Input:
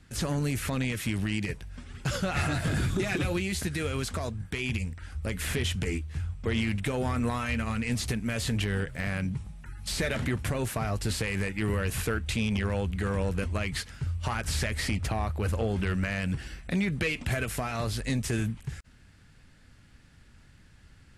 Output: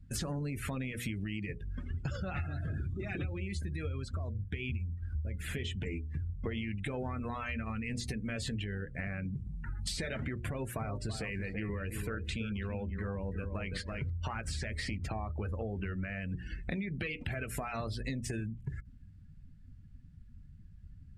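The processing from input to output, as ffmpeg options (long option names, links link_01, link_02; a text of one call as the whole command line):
ffmpeg -i in.wav -filter_complex "[0:a]asettb=1/sr,asplit=3[link_01][link_02][link_03];[link_01]atrim=end=1.904[link_04];[link_02]atrim=start=1.9:end=5.41,asetpts=PTS-STARTPTS,afade=type=in:duration=0.004:curve=qsin,afade=type=out:start_time=3.506:duration=0.004:curve=qsin,equalizer=frequency=78:width_type=o:width=0.86:gain=12[link_05];[link_03]atrim=start=5.406[link_06];[link_04][link_05]acrossfade=duration=0.004:curve1=hsin:curve2=qsin[link_07];[link_07][link_06]acrossfade=duration=0.004:curve1=qsin:curve2=hsin,asettb=1/sr,asplit=3[link_08][link_09][link_10];[link_08]atrim=end=10.464[link_11];[link_09]atrim=start=10.46:end=14.1,asetpts=PTS-STARTPTS,afade=type=in:duration=0.004:curve=qsin,afade=type=out:start_time=3.636:duration=0.004:curve=qsin,asplit=2[link_12][link_13];[link_13]adelay=333,lowpass=frequency=3300:poles=1,volume=-7.5dB,asplit=2[link_14][link_15];[link_15]adelay=333,lowpass=frequency=3300:poles=1,volume=0.26,asplit=2[link_16][link_17];[link_17]adelay=333,lowpass=frequency=3300:poles=1,volume=0.26[link_18];[link_12][link_14][link_16][link_18]amix=inputs=4:normalize=0,atrim=end_sample=160524[link_19];[link_10]atrim=start=14.096[link_20];[link_11][link_19]acrossfade=duration=0.004:curve1=hsin:curve2=qsin[link_21];[link_21][link_20]acrossfade=duration=0.004:curve1=qsin:curve2=hsin,bandreject=frequency=60:width_type=h:width=6,bandreject=frequency=120:width_type=h:width=6,bandreject=frequency=180:width_type=h:width=6,bandreject=frequency=240:width_type=h:width=6,bandreject=frequency=300:width_type=h:width=6,bandreject=frequency=360:width_type=h:width=6,bandreject=frequency=420:width_type=h:width=6,bandreject=frequency=480:width_type=h:width=6,bandreject=frequency=540:width_type=h:width=6,bandreject=frequency=600:width_type=h:width=6,acompressor=threshold=-38dB:ratio=16,afftdn=noise_reduction=26:noise_floor=-49,volume=5dB" out.wav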